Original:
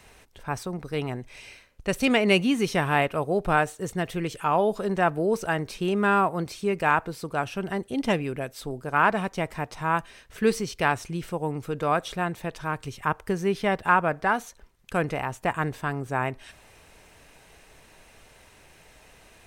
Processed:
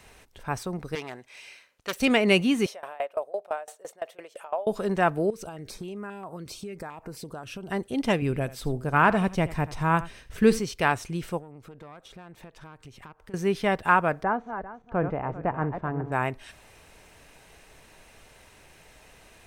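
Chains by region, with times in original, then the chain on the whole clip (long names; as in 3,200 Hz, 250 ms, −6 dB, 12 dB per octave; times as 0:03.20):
0:00.95–0:02.00: phase distortion by the signal itself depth 0.24 ms + high-pass filter 820 Hz 6 dB per octave + high-shelf EQ 9,800 Hz −3.5 dB
0:02.66–0:04.67: downward compressor 2.5 to 1, threshold −32 dBFS + high-pass with resonance 600 Hz, resonance Q 4.8 + tremolo with a ramp in dB decaying 5.9 Hz, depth 23 dB
0:05.30–0:07.71: downward compressor 8 to 1, threshold −33 dBFS + notch on a step sequencer 7.5 Hz 810–3,500 Hz
0:08.22–0:10.59: low-shelf EQ 210 Hz +10.5 dB + single-tap delay 80 ms −17 dB
0:11.39–0:13.34: downward compressor 8 to 1, threshold −39 dBFS + high-shelf EQ 5,000 Hz −6.5 dB + tube saturation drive 35 dB, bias 0.65
0:14.23–0:16.12: feedback delay that plays each chunk backwards 198 ms, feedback 41%, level −8.5 dB + low-pass filter 1,100 Hz
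whole clip: no processing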